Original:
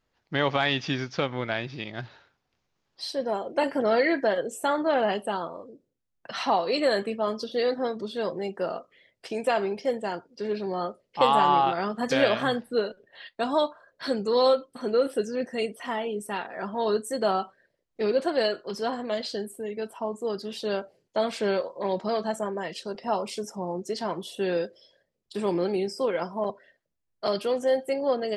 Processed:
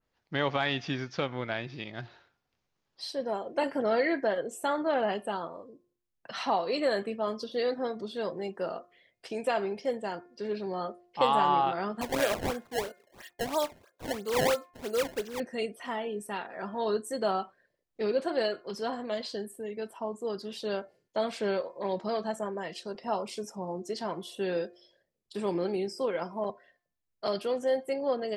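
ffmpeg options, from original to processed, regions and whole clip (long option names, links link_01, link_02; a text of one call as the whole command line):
ffmpeg -i in.wav -filter_complex "[0:a]asettb=1/sr,asplit=3[link_01][link_02][link_03];[link_01]atrim=end=12.014[link_04];[link_02]atrim=start=12.01:end=15.4,asetpts=PTS-STARTPTS,afade=type=in:duration=0.004:curve=qsin,afade=type=out:start_time=3.386:duration=0.004:curve=qsin,highpass=frequency=380:poles=1,acrusher=samples=21:mix=1:aa=0.000001:lfo=1:lforange=33.6:lforate=3[link_05];[link_03]atrim=start=15.396[link_06];[link_04][link_05]acrossfade=duration=0.004:curve1=hsin:curve2=qsin[link_07];[link_07][link_06]acrossfade=duration=0.004:curve1=qsin:curve2=hsin,bandreject=frequency=353.3:width_type=h:width=4,bandreject=frequency=706.6:width_type=h:width=4,bandreject=frequency=1059.9:width_type=h:width=4,bandreject=frequency=1413.2:width_type=h:width=4,bandreject=frequency=1766.5:width_type=h:width=4,bandreject=frequency=2119.8:width_type=h:width=4,bandreject=frequency=2473.1:width_type=h:width=4,adynamicequalizer=threshold=0.0141:dfrequency=2600:dqfactor=0.7:tfrequency=2600:tqfactor=0.7:attack=5:release=100:ratio=0.375:range=2:mode=cutabove:tftype=highshelf,volume=-4dB" out.wav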